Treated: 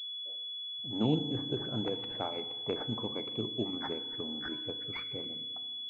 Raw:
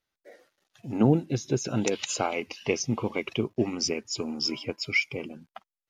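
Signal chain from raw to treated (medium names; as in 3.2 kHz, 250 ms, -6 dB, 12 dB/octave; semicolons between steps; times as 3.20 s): level-controlled noise filter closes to 760 Hz, open at -21.5 dBFS; FDN reverb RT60 1.4 s, low-frequency decay 1.4×, high-frequency decay 0.8×, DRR 10.5 dB; class-D stage that switches slowly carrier 3.4 kHz; trim -8.5 dB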